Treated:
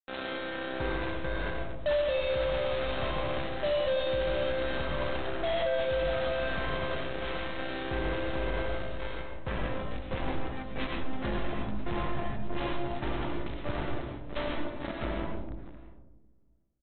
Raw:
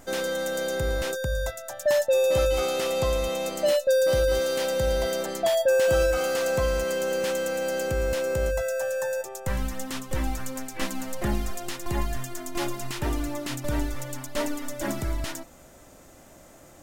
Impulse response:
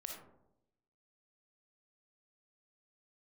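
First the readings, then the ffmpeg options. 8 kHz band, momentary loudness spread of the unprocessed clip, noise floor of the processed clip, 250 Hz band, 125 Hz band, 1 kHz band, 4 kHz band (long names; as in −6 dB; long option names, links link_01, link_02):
below −40 dB, 11 LU, −53 dBFS, −3.5 dB, −4.5 dB, −2.0 dB, −5.0 dB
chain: -filter_complex "[0:a]asplit=2[link_01][link_02];[link_02]adelay=639,lowpass=frequency=2400:poles=1,volume=-7dB,asplit=2[link_03][link_04];[link_04]adelay=639,lowpass=frequency=2400:poles=1,volume=0.49,asplit=2[link_05][link_06];[link_06]adelay=639,lowpass=frequency=2400:poles=1,volume=0.49,asplit=2[link_07][link_08];[link_08]adelay=639,lowpass=frequency=2400:poles=1,volume=0.49,asplit=2[link_09][link_10];[link_10]adelay=639,lowpass=frequency=2400:poles=1,volume=0.49,asplit=2[link_11][link_12];[link_12]adelay=639,lowpass=frequency=2400:poles=1,volume=0.49[link_13];[link_01][link_03][link_05][link_07][link_09][link_11][link_13]amix=inputs=7:normalize=0,aresample=8000,acrusher=bits=3:mix=0:aa=0.5,aresample=44100[link_14];[1:a]atrim=start_sample=2205,asetrate=22932,aresample=44100[link_15];[link_14][link_15]afir=irnorm=-1:irlink=0,alimiter=limit=-16dB:level=0:latency=1:release=24,volume=-5.5dB"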